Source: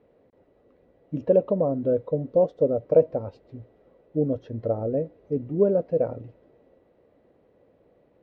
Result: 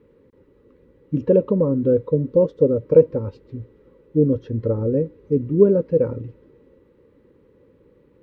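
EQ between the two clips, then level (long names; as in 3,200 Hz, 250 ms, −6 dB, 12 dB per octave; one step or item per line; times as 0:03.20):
Butterworth band-reject 690 Hz, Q 1.8
low-shelf EQ 160 Hz +7 dB
parametric band 440 Hz +2.5 dB 1.9 octaves
+4.0 dB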